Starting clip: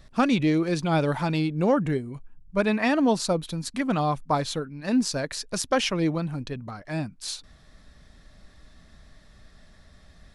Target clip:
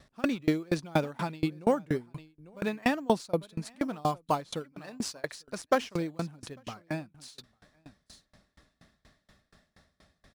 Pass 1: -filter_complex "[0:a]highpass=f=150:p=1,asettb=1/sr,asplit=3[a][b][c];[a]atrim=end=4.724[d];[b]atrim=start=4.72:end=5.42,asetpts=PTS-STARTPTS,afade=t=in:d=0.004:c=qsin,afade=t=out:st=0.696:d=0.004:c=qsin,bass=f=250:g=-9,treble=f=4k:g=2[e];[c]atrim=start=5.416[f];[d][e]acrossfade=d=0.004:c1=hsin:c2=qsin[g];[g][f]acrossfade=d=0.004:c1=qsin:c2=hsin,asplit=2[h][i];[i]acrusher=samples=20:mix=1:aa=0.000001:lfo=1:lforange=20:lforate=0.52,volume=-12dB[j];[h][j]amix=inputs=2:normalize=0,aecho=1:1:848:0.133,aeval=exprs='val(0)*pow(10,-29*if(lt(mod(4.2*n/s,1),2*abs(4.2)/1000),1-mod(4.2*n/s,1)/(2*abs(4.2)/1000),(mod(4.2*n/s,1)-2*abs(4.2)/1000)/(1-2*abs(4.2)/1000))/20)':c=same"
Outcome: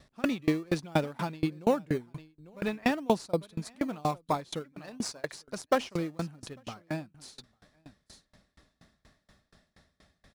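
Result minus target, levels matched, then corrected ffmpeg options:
decimation with a swept rate: distortion +6 dB
-filter_complex "[0:a]highpass=f=150:p=1,asettb=1/sr,asplit=3[a][b][c];[a]atrim=end=4.724[d];[b]atrim=start=4.72:end=5.42,asetpts=PTS-STARTPTS,afade=t=in:d=0.004:c=qsin,afade=t=out:st=0.696:d=0.004:c=qsin,bass=f=250:g=-9,treble=f=4k:g=2[e];[c]atrim=start=5.416[f];[d][e]acrossfade=d=0.004:c1=hsin:c2=qsin[g];[g][f]acrossfade=d=0.004:c1=qsin:c2=hsin,asplit=2[h][i];[i]acrusher=samples=8:mix=1:aa=0.000001:lfo=1:lforange=8:lforate=0.52,volume=-12dB[j];[h][j]amix=inputs=2:normalize=0,aecho=1:1:848:0.133,aeval=exprs='val(0)*pow(10,-29*if(lt(mod(4.2*n/s,1),2*abs(4.2)/1000),1-mod(4.2*n/s,1)/(2*abs(4.2)/1000),(mod(4.2*n/s,1)-2*abs(4.2)/1000)/(1-2*abs(4.2)/1000))/20)':c=same"

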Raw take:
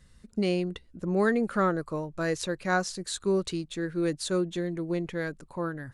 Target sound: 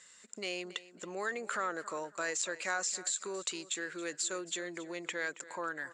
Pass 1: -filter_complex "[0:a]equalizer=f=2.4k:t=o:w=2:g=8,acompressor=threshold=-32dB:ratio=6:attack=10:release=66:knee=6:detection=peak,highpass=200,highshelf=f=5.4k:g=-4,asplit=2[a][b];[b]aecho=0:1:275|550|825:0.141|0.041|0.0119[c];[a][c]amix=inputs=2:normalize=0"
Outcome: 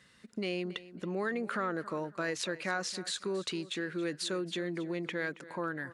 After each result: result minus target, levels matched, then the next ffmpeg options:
8000 Hz band -9.5 dB; 250 Hz band +7.5 dB
-filter_complex "[0:a]lowpass=f=7.4k:t=q:w=15,equalizer=f=2.4k:t=o:w=2:g=8,acompressor=threshold=-32dB:ratio=6:attack=10:release=66:knee=6:detection=peak,highpass=200,highshelf=f=5.4k:g=-4,asplit=2[a][b];[b]aecho=0:1:275|550|825:0.141|0.041|0.0119[c];[a][c]amix=inputs=2:normalize=0"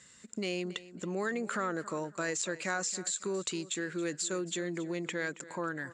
250 Hz band +7.0 dB
-filter_complex "[0:a]lowpass=f=7.4k:t=q:w=15,equalizer=f=2.4k:t=o:w=2:g=8,acompressor=threshold=-32dB:ratio=6:attack=10:release=66:knee=6:detection=peak,highpass=510,highshelf=f=5.4k:g=-4,asplit=2[a][b];[b]aecho=0:1:275|550|825:0.141|0.041|0.0119[c];[a][c]amix=inputs=2:normalize=0"

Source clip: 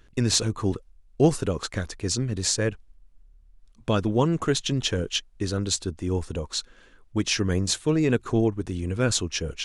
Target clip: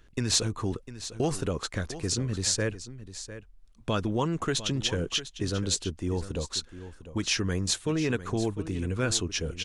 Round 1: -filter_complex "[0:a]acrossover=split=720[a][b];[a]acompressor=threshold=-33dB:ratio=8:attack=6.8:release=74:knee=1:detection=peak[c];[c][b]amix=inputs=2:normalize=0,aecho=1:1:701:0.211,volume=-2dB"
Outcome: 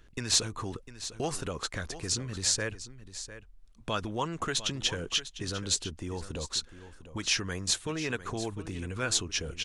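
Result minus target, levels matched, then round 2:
compressor: peak gain reduction +8.5 dB
-filter_complex "[0:a]acrossover=split=720[a][b];[a]acompressor=threshold=-23.5dB:ratio=8:attack=6.8:release=74:knee=1:detection=peak[c];[c][b]amix=inputs=2:normalize=0,aecho=1:1:701:0.211,volume=-2dB"

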